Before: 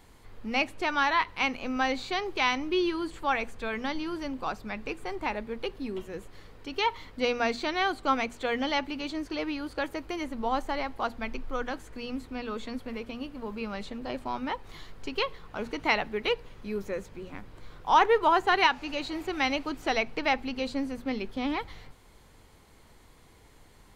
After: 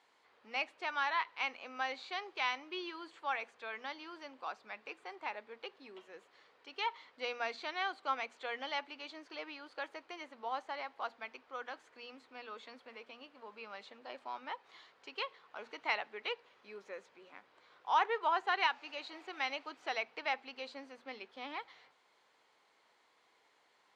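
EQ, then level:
band-pass filter 620–4,900 Hz
−8.0 dB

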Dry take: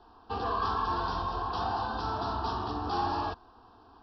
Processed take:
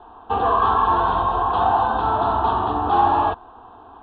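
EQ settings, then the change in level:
Butterworth low-pass 3,700 Hz 72 dB per octave
parametric band 760 Hz +7.5 dB 1.5 octaves
+7.5 dB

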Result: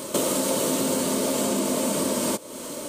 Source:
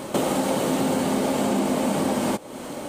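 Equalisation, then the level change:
Butterworth band-reject 780 Hz, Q 4.4
bass and treble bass −6 dB, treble +8 dB
parametric band 1,800 Hz −4 dB 1.1 octaves
0.0 dB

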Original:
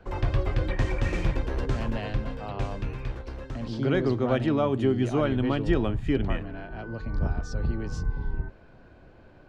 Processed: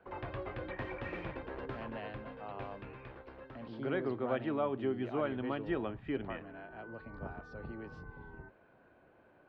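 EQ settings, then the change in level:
high-pass filter 560 Hz 6 dB per octave
high-frequency loss of the air 440 metres
−3.5 dB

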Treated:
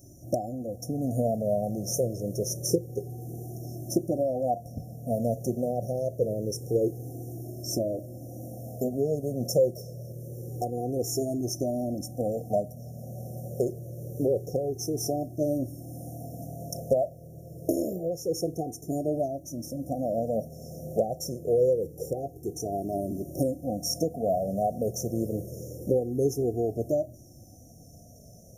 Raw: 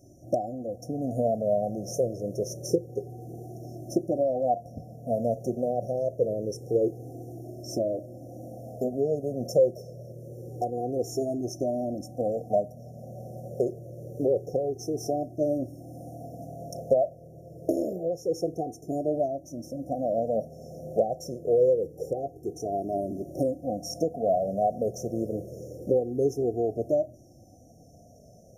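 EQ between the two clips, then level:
first-order pre-emphasis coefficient 0.8
low-shelf EQ 310 Hz +10.5 dB
+9.0 dB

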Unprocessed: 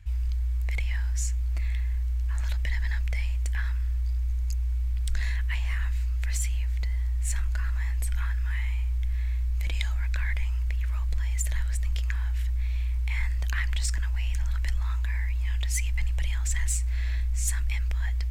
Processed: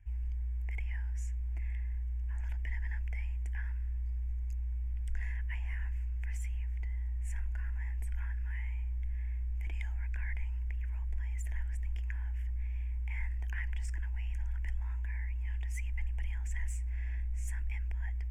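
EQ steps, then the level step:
high-shelf EQ 3,400 Hz −9 dB
high-shelf EQ 7,500 Hz −4.5 dB
phaser with its sweep stopped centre 820 Hz, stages 8
−7.0 dB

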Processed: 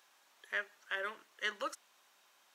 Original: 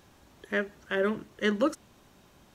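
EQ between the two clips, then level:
high-pass filter 1,000 Hz 12 dB per octave
−4.0 dB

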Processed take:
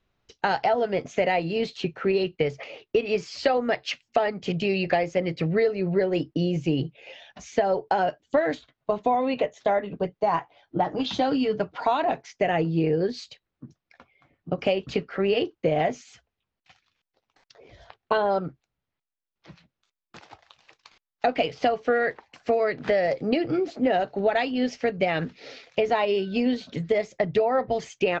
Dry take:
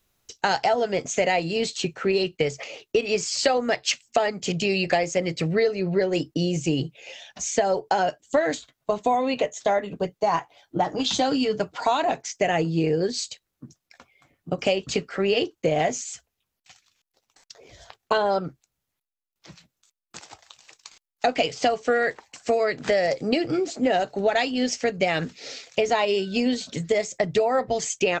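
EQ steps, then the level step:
high-frequency loss of the air 240 metres
0.0 dB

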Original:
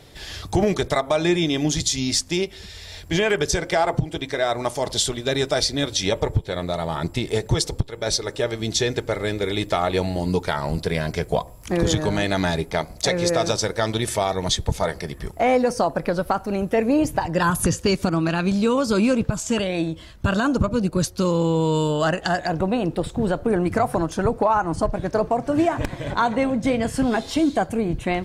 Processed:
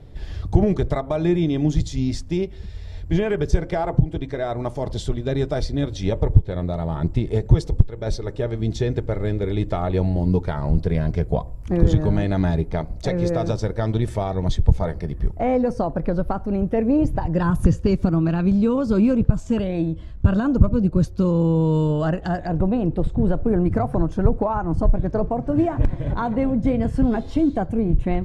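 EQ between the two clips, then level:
spectral tilt −4 dB per octave
−6.0 dB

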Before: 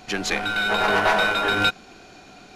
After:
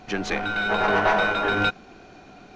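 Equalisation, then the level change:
head-to-tape spacing loss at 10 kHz 22 dB
parametric band 6,000 Hz +6.5 dB 0.21 octaves
+1.5 dB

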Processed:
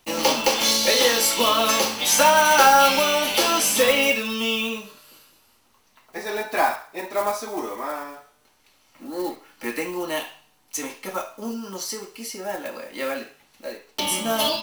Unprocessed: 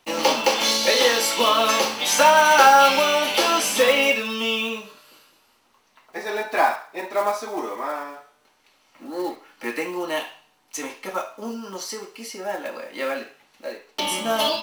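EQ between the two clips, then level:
low-shelf EQ 170 Hz +12 dB
high-shelf EQ 4,900 Hz +7 dB
high-shelf EQ 11,000 Hz +4 dB
−2.5 dB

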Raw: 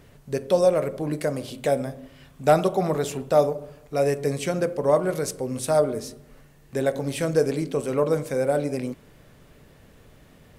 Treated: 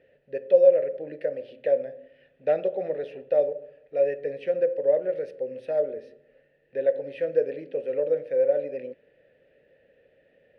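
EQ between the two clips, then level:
moving average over 6 samples
formant filter e
low-shelf EQ 69 Hz +10.5 dB
+4.0 dB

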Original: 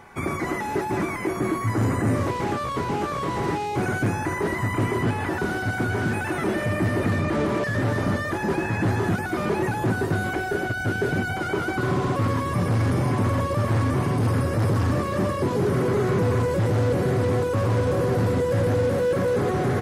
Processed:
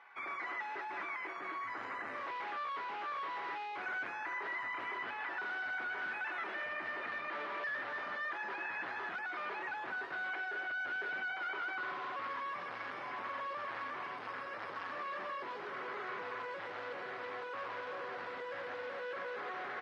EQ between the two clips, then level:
high-pass filter 1,300 Hz 12 dB per octave
low-pass filter 8,300 Hz 12 dB per octave
high-frequency loss of the air 340 metres
−3.5 dB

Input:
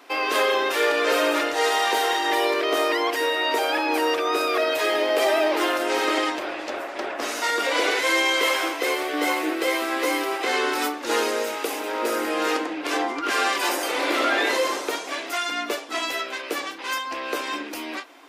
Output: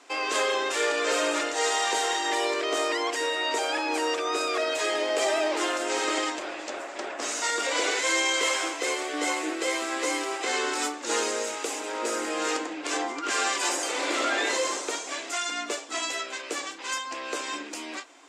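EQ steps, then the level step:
low-pass with resonance 7,500 Hz, resonance Q 4.3
low-shelf EQ 75 Hz −9.5 dB
−5.0 dB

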